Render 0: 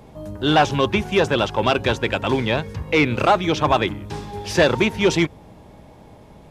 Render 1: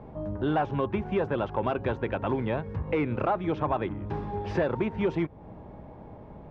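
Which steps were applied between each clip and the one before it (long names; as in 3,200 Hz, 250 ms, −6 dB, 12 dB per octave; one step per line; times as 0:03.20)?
low-pass filter 1,400 Hz 12 dB per octave
downward compressor 2.5 to 1, threshold −28 dBFS, peak gain reduction 11 dB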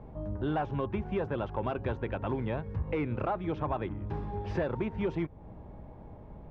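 low-shelf EQ 78 Hz +11.5 dB
level −5.5 dB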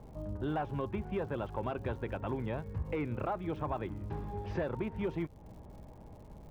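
surface crackle 170 per second −50 dBFS
level −3.5 dB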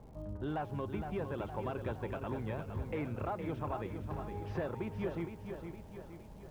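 feedback echo at a low word length 463 ms, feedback 55%, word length 10 bits, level −7 dB
level −3 dB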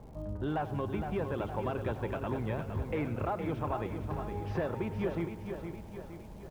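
repeating echo 99 ms, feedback 58%, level −16.5 dB
level +4 dB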